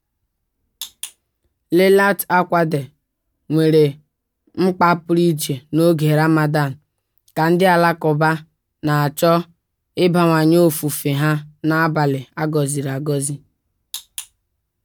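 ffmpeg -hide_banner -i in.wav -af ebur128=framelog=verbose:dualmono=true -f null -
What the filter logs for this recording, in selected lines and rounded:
Integrated loudness:
  I:         -14.1 LUFS
  Threshold: -25.2 LUFS
Loudness range:
  LRA:         3.3 LU
  Threshold: -35.0 LUFS
  LRA low:   -17.3 LUFS
  LRA high:  -14.0 LUFS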